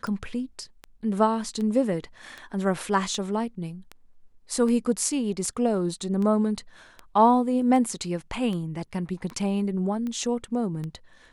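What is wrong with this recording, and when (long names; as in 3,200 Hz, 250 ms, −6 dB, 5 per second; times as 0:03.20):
scratch tick 78 rpm −22 dBFS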